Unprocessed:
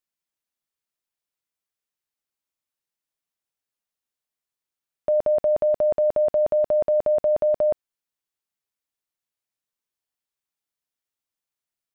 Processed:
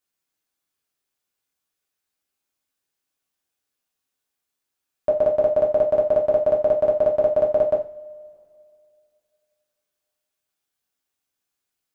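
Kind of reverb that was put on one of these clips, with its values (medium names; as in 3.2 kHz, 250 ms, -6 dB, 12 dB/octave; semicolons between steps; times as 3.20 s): two-slope reverb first 0.34 s, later 2.5 s, from -27 dB, DRR -3 dB; trim +2 dB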